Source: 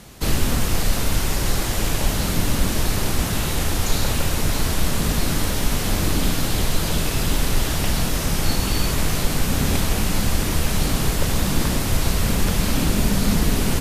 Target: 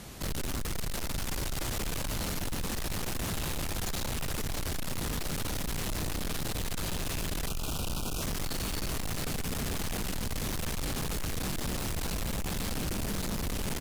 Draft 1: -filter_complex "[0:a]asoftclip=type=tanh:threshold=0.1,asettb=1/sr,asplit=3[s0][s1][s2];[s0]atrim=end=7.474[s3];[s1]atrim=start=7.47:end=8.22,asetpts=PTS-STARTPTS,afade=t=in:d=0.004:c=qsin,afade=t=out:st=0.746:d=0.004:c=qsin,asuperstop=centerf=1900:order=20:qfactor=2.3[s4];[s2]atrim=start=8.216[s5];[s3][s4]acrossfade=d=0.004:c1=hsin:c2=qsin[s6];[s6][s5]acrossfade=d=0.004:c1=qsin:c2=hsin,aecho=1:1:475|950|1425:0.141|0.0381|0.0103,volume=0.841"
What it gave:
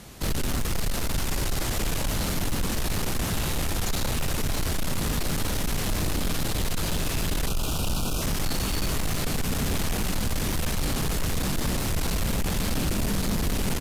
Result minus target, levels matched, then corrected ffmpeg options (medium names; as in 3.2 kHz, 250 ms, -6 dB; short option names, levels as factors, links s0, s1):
saturation: distortion -5 dB
-filter_complex "[0:a]asoftclip=type=tanh:threshold=0.0335,asettb=1/sr,asplit=3[s0][s1][s2];[s0]atrim=end=7.474[s3];[s1]atrim=start=7.47:end=8.22,asetpts=PTS-STARTPTS,afade=t=in:d=0.004:c=qsin,afade=t=out:st=0.746:d=0.004:c=qsin,asuperstop=centerf=1900:order=20:qfactor=2.3[s4];[s2]atrim=start=8.216[s5];[s3][s4]acrossfade=d=0.004:c1=hsin:c2=qsin[s6];[s6][s5]acrossfade=d=0.004:c1=qsin:c2=hsin,aecho=1:1:475|950|1425:0.141|0.0381|0.0103,volume=0.841"